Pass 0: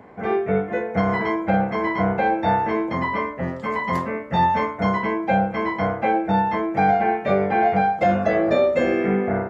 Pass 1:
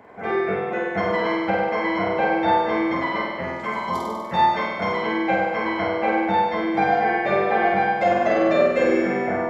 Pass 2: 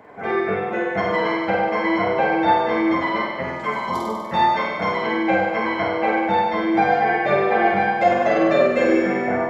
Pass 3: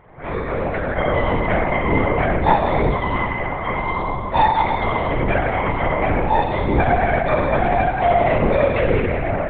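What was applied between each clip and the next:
bass shelf 330 Hz -9.5 dB; spectral selection erased 3.74–4.24 s, 1.3–3 kHz; on a send: flutter echo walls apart 8.4 m, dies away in 1.5 s
flange 0.83 Hz, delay 6.3 ms, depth 3.5 ms, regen +58%; trim +6 dB
level rider gain up to 4 dB; FDN reverb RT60 2.4 s, high-frequency decay 0.7×, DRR 1 dB; LPC vocoder at 8 kHz whisper; trim -4 dB

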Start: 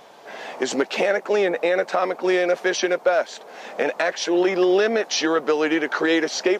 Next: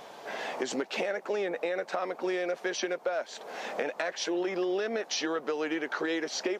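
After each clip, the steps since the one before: compression 3:1, threshold -32 dBFS, peak gain reduction 13.5 dB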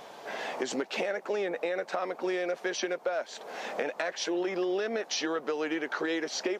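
no audible change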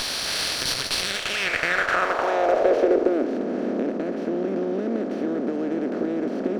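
spectral levelling over time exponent 0.2; band-pass sweep 4.4 kHz -> 210 Hz, 0.99–3.47 s; sliding maximum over 3 samples; trim +9 dB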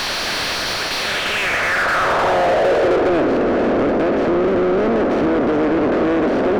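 overdrive pedal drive 33 dB, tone 1.6 kHz, clips at -6 dBFS; trim -2.5 dB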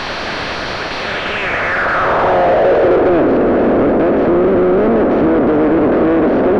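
tape spacing loss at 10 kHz 26 dB; trim +6 dB

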